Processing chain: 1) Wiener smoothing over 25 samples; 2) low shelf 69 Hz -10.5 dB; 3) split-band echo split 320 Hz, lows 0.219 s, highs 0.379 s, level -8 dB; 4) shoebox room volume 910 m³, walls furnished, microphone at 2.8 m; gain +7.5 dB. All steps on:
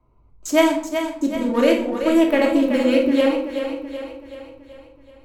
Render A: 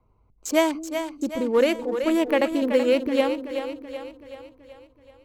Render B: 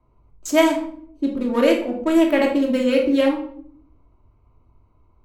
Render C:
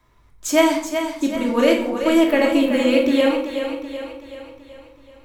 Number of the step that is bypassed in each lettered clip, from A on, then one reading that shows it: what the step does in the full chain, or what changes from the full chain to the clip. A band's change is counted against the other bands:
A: 4, momentary loudness spread change -1 LU; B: 3, momentary loudness spread change -6 LU; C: 1, 4 kHz band +2.0 dB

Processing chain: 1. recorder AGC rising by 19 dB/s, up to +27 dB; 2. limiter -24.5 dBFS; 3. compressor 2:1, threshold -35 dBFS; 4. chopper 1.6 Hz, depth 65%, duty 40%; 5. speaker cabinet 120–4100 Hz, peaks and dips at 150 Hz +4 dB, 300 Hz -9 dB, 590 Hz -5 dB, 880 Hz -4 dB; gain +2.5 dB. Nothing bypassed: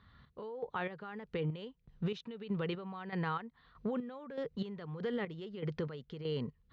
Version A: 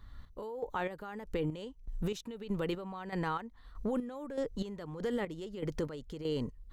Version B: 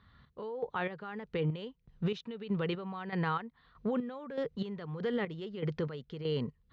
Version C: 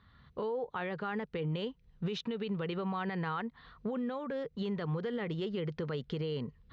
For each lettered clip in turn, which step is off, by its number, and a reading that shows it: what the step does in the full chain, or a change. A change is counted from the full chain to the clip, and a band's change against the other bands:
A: 5, 125 Hz band -3.0 dB; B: 3, loudness change +3.5 LU; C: 4, momentary loudness spread change -4 LU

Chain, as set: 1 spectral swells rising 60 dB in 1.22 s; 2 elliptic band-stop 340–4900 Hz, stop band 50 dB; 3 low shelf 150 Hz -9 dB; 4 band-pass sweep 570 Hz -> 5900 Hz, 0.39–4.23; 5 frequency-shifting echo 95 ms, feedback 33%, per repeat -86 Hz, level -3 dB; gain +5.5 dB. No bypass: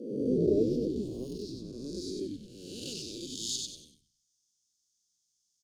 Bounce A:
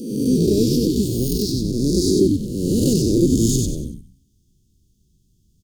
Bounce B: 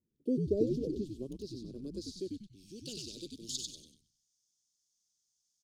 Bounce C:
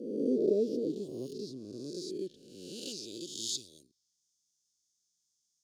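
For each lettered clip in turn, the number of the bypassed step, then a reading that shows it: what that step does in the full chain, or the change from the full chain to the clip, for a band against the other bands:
4, 125 Hz band +7.5 dB; 1, 125 Hz band +3.0 dB; 5, 125 Hz band -8.0 dB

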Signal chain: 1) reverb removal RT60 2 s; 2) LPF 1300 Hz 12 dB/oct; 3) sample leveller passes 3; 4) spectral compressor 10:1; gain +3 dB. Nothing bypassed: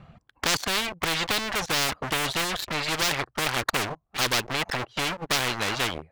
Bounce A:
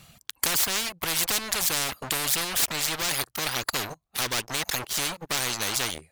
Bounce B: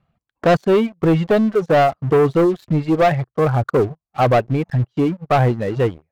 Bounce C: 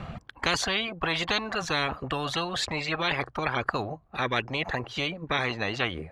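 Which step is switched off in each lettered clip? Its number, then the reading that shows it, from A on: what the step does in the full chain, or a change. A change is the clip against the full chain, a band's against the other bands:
2, 8 kHz band +9.5 dB; 4, 4 kHz band -27.0 dB; 3, crest factor change +2.0 dB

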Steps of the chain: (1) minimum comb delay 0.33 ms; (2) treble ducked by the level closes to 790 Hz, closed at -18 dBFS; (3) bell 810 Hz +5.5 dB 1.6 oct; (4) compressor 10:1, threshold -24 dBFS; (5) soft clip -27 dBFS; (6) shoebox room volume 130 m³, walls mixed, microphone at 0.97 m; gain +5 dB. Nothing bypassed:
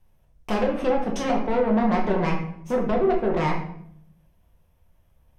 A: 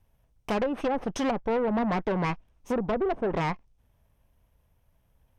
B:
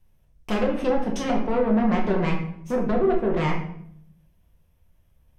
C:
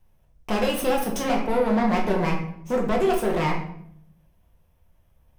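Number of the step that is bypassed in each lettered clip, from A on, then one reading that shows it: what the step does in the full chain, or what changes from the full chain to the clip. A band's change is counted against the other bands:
6, momentary loudness spread change -3 LU; 3, 1 kHz band -3.0 dB; 2, 4 kHz band +5.5 dB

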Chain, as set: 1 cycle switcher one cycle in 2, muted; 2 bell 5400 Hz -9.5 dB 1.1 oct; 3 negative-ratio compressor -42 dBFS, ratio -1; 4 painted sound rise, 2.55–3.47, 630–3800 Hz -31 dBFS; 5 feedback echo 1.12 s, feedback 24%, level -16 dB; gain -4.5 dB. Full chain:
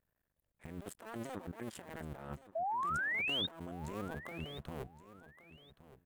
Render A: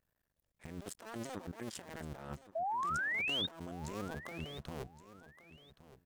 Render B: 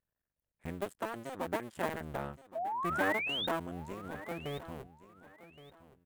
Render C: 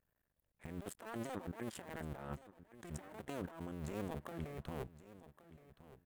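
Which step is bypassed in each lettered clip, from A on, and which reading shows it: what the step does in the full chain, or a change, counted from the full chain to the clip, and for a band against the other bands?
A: 2, 8 kHz band +5.0 dB; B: 3, crest factor change +5.0 dB; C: 4, 4 kHz band -18.0 dB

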